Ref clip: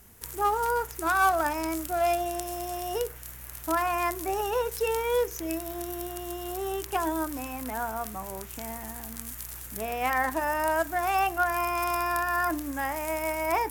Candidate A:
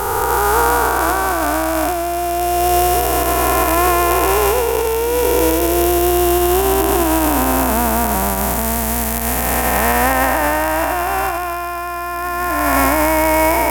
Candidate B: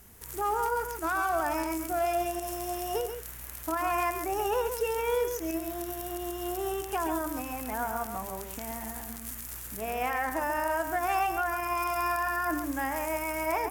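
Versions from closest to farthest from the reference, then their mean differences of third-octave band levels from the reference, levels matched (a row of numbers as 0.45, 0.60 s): B, A; 2.5, 7.5 dB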